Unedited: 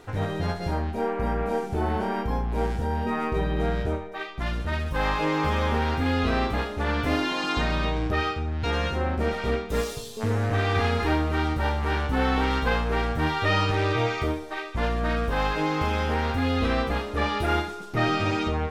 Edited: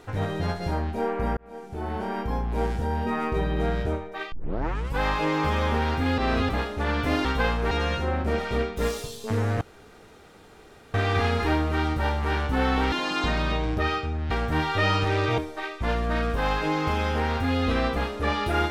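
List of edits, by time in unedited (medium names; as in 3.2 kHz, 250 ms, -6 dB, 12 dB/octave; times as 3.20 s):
1.37–2.73 s: fade in equal-power
4.32 s: tape start 0.67 s
6.18–6.49 s: reverse
7.25–8.64 s: swap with 12.52–12.98 s
10.54 s: insert room tone 1.33 s
14.05–14.32 s: delete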